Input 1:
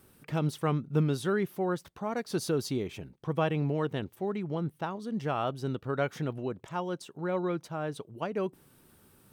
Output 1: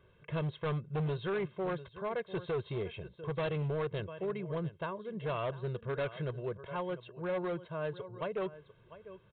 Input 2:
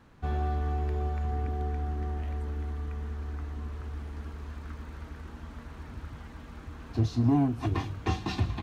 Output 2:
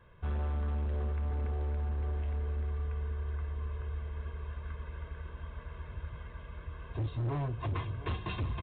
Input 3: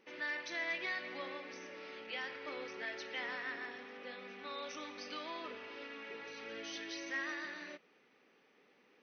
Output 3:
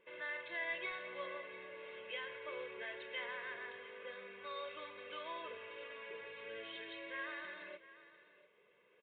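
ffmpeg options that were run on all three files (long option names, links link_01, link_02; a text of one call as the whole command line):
ffmpeg -i in.wav -af "aecho=1:1:1.9:0.89,aecho=1:1:697:0.15,aresample=8000,volume=25.5dB,asoftclip=hard,volume=-25.5dB,aresample=44100,volume=-4.5dB" out.wav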